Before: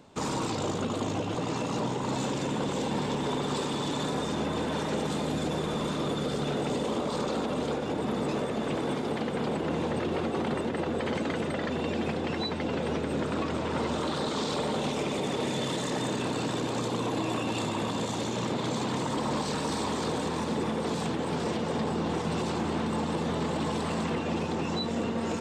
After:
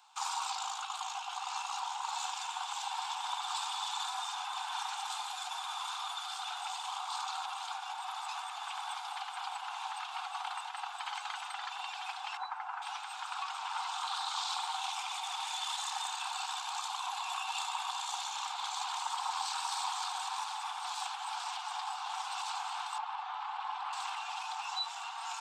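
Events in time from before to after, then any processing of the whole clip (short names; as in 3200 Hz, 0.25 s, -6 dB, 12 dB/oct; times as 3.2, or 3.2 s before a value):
12.37–12.82 resonant high shelf 2300 Hz -14 dB, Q 1.5
22.98–23.93 LPF 2300 Hz
whole clip: Chebyshev high-pass 750 Hz, order 8; bell 1900 Hz -11.5 dB 0.36 oct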